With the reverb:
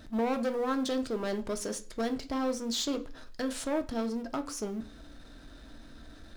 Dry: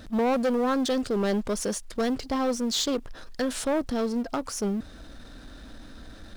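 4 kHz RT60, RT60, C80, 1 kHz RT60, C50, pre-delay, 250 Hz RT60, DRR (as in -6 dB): 0.45 s, 0.40 s, 21.5 dB, 0.40 s, 16.5 dB, 3 ms, 0.50 s, 7.0 dB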